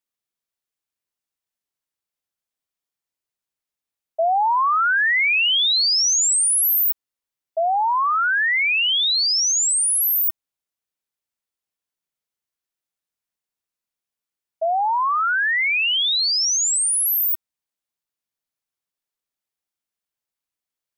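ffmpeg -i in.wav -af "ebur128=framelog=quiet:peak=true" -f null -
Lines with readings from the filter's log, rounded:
Integrated loudness:
  I:         -17.0 LUFS
  Threshold: -27.2 LUFS
Loudness range:
  LRA:        10.7 LU
  Threshold: -39.2 LUFS
  LRA low:   -27.1 LUFS
  LRA high:  -16.4 LUFS
True peak:
  Peak:      -15.2 dBFS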